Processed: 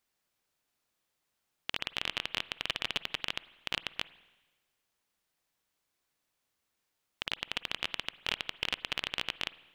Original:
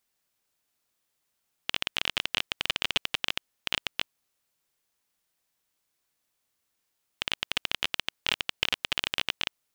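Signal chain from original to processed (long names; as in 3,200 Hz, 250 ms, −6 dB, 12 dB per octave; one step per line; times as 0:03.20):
high-shelf EQ 5,100 Hz −6 dB
brickwall limiter −13 dBFS, peak gain reduction 6.5 dB
spring reverb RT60 1.2 s, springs 47/53 ms, chirp 35 ms, DRR 17 dB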